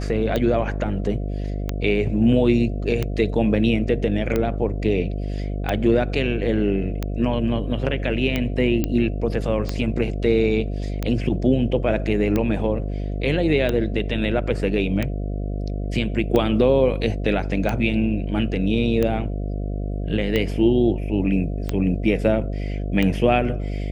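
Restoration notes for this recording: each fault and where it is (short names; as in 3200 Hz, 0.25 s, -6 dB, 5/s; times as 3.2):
buzz 50 Hz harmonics 14 -26 dBFS
tick 45 rpm -10 dBFS
8.84 pop -9 dBFS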